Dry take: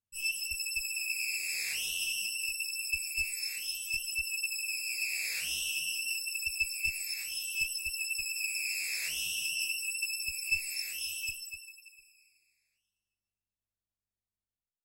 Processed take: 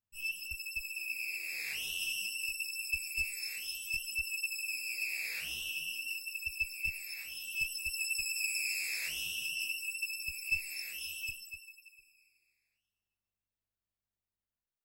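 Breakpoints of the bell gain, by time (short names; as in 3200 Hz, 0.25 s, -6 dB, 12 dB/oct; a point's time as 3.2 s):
bell 7700 Hz 1.6 oct
1.47 s -13 dB
2.07 s -6 dB
4.75 s -6 dB
5.55 s -12 dB
7.35 s -12 dB
8.05 s -0.5 dB
8.57 s -0.5 dB
9.32 s -8.5 dB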